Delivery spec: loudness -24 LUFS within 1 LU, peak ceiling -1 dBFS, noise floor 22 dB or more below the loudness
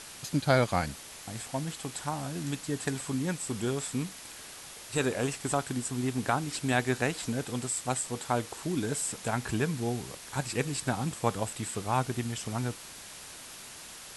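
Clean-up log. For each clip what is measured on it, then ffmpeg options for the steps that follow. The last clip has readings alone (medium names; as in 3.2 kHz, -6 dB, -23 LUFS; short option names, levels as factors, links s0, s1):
noise floor -46 dBFS; noise floor target -54 dBFS; loudness -32.0 LUFS; peak level -10.5 dBFS; loudness target -24.0 LUFS
-> -af "afftdn=nr=8:nf=-46"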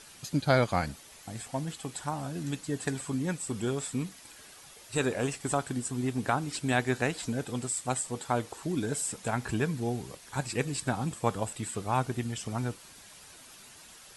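noise floor -52 dBFS; noise floor target -54 dBFS
-> -af "afftdn=nr=6:nf=-52"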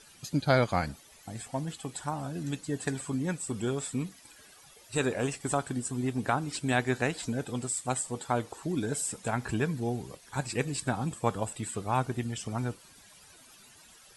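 noise floor -56 dBFS; loudness -32.0 LUFS; peak level -10.5 dBFS; loudness target -24.0 LUFS
-> -af "volume=2.51"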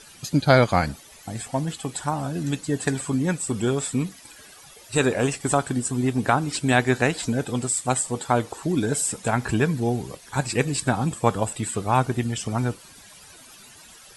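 loudness -24.0 LUFS; peak level -2.5 dBFS; noise floor -48 dBFS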